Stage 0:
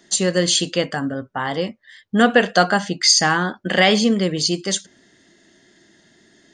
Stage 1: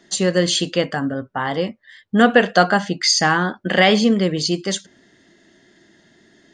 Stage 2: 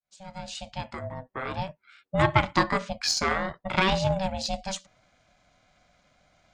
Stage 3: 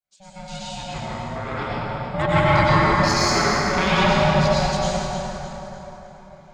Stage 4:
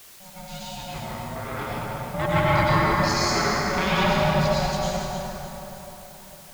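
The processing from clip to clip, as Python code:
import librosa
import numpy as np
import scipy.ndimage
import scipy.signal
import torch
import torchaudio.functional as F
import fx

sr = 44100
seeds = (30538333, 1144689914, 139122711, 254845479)

y1 = fx.lowpass(x, sr, hz=3900.0, slope=6)
y1 = y1 * 10.0 ** (1.5 / 20.0)
y2 = fx.fade_in_head(y1, sr, length_s=1.53)
y2 = y2 * np.sin(2.0 * np.pi * 380.0 * np.arange(len(y2)) / sr)
y2 = fx.cheby_harmonics(y2, sr, harmonics=(2, 3, 7), levels_db=(-18, -23, -43), full_scale_db=-1.0)
y2 = y2 * 10.0 ** (-4.5 / 20.0)
y3 = fx.echo_feedback(y2, sr, ms=303, feedback_pct=42, wet_db=-10.0)
y3 = fx.rev_plate(y3, sr, seeds[0], rt60_s=3.9, hf_ratio=0.45, predelay_ms=85, drr_db=-9.0)
y3 = y3 * 10.0 ** (-2.5 / 20.0)
y4 = fx.dmg_noise_colour(y3, sr, seeds[1], colour='white', level_db=-44.0)
y4 = y4 * 10.0 ** (-3.5 / 20.0)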